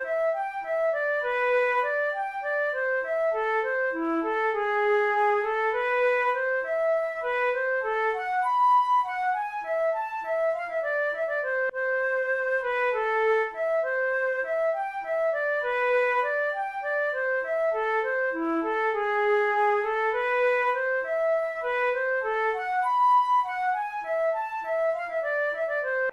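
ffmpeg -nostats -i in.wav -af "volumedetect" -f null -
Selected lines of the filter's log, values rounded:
mean_volume: -25.7 dB
max_volume: -14.7 dB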